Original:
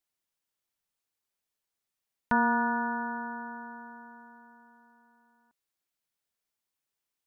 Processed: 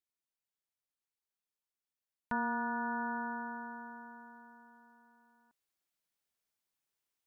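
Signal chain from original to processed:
speech leveller within 4 dB 0.5 s
level −5.5 dB

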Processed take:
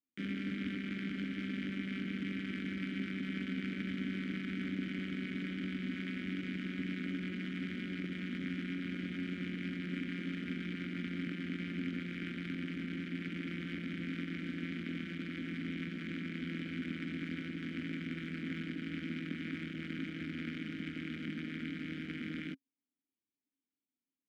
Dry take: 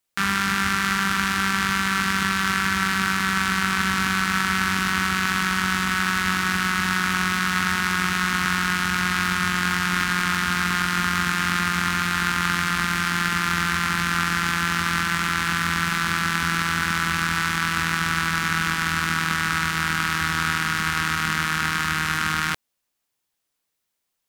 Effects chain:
running median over 41 samples
formant filter i
level +5.5 dB

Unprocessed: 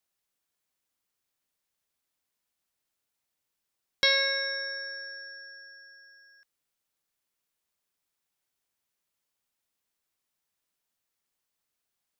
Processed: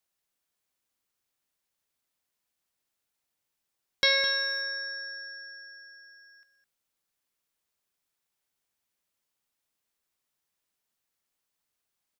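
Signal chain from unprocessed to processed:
0:04.17–0:04.62: slack as between gear wheels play −53.5 dBFS
slap from a distant wall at 36 metres, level −10 dB

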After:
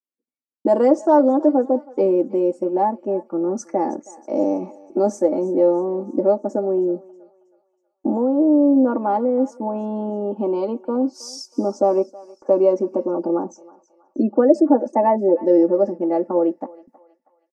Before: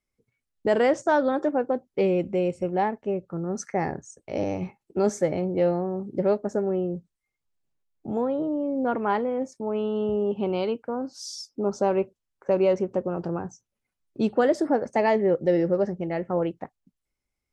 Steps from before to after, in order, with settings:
camcorder AGC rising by 8 dB per second
0:13.14–0:15.44: gate on every frequency bin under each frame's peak −30 dB strong
high-pass filter 250 Hz 24 dB per octave
flat-topped bell 2,400 Hz −12 dB
noise gate with hold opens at −55 dBFS
tilt shelving filter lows +6 dB, about 1,200 Hz
notch filter 550 Hz, Q 12
comb filter 3.5 ms, depth 80%
feedback echo with a high-pass in the loop 320 ms, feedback 50%, high-pass 780 Hz, level −18 dB
level +1.5 dB

